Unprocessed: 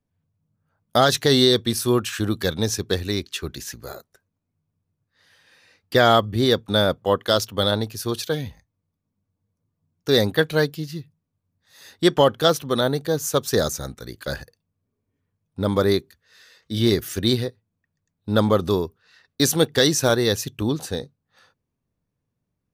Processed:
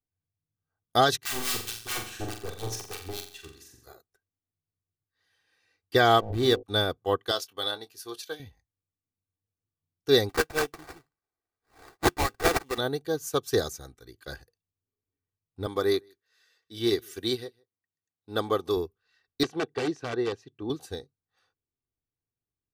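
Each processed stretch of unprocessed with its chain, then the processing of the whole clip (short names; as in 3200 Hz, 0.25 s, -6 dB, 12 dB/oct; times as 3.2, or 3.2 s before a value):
1.17–3.87 wrapped overs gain 16 dB + harmonic tremolo 4.7 Hz, depth 100%, crossover 1200 Hz + flutter echo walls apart 7.5 m, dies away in 0.66 s
6.18–6.63 backlash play -26.5 dBFS + de-hum 53.61 Hz, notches 18 + backwards sustainer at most 38 dB/s
7.31–8.4 HPF 670 Hz 6 dB/oct + doubler 23 ms -11.5 dB
10.29–12.78 RIAA curve recording + LFO notch square 1 Hz 480–4600 Hz + sample-rate reducer 3100 Hz, jitter 20%
15.66–18.77 HPF 260 Hz 6 dB/oct + echo 0.154 s -23.5 dB
19.43–20.7 wrapped overs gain 10 dB + HPF 160 Hz + tape spacing loss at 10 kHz 27 dB
whole clip: comb 2.6 ms, depth 56%; upward expander 1.5:1, over -36 dBFS; gain -4 dB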